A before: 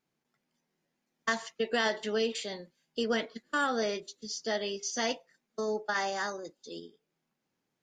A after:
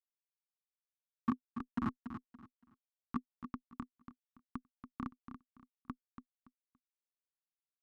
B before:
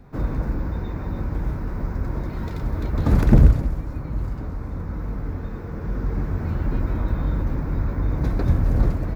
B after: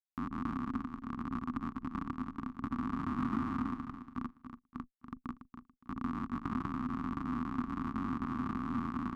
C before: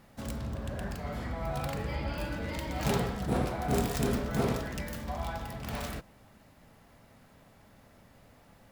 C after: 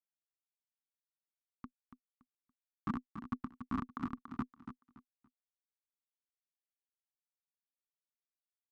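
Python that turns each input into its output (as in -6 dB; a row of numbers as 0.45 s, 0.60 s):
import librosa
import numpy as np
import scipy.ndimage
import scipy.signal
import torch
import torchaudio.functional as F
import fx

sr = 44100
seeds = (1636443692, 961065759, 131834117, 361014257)

y = fx.hum_notches(x, sr, base_hz=60, count=7)
y = fx.schmitt(y, sr, flips_db=-20.5)
y = fx.over_compress(y, sr, threshold_db=-35.0, ratio=-1.0)
y = fx.double_bandpass(y, sr, hz=540.0, octaves=2.2)
y = fx.notch(y, sr, hz=430.0, q=12.0)
y = fx.echo_feedback(y, sr, ms=284, feedback_pct=25, wet_db=-9.5)
y = y * librosa.db_to_amplitude(17.5)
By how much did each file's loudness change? -11.5 LU, -14.0 LU, -9.0 LU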